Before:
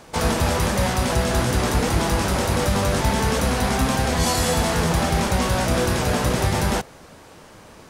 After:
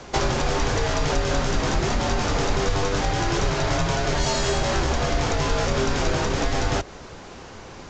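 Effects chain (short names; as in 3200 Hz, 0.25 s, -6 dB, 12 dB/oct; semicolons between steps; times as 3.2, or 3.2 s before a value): compressor 5:1, threshold -24 dBFS, peak gain reduction 9 dB; frequency shift -99 Hz; gain +5 dB; A-law 128 kbps 16000 Hz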